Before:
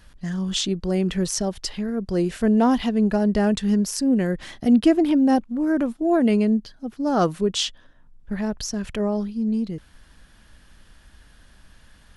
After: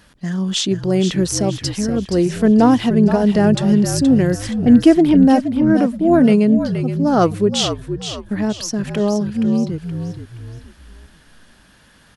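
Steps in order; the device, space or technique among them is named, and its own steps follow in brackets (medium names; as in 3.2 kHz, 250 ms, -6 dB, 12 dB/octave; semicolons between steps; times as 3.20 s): filter by subtraction (in parallel: low-pass 230 Hz 12 dB/octave + polarity flip); 4.53–5.86 s: on the sum: level-controlled noise filter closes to 430 Hz, open at -13 dBFS; frequency-shifting echo 473 ms, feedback 39%, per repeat -54 Hz, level -8.5 dB; trim +4.5 dB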